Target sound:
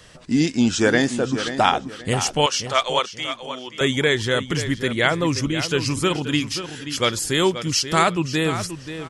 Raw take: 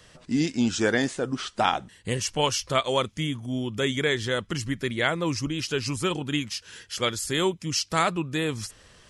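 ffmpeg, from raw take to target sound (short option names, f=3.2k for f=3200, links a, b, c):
-filter_complex "[0:a]asettb=1/sr,asplit=3[a][b][c];[a]atrim=end=2.464[d];[b]atrim=start=2.46:end=3.81,asetpts=PTS-STARTPTS,afade=t=in:d=0.004:c=qsin,afade=t=out:st=1.346:d=0.004:c=qsin,highpass=630,lowpass=6.9k[e];[c]atrim=start=3.806[f];[d][e]acrossfade=d=0.004:c1=hsin:c2=qsin[g];[g][f]acrossfade=d=0.004:c1=qsin:c2=hsin,asplit=2[h][i];[i]adelay=531,lowpass=f=4.8k:p=1,volume=-10.5dB,asplit=2[j][k];[k]adelay=531,lowpass=f=4.8k:p=1,volume=0.28,asplit=2[l][m];[m]adelay=531,lowpass=f=4.8k:p=1,volume=0.28[n];[h][j][l][n]amix=inputs=4:normalize=0,volume=5.5dB"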